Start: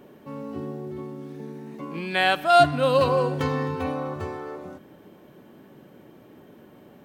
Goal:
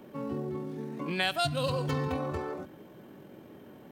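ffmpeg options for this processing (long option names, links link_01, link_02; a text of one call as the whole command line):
ffmpeg -i in.wav -filter_complex "[0:a]atempo=1.8,acrossover=split=160|3000[link_01][link_02][link_03];[link_02]acompressor=threshold=-30dB:ratio=6[link_04];[link_01][link_04][link_03]amix=inputs=3:normalize=0" out.wav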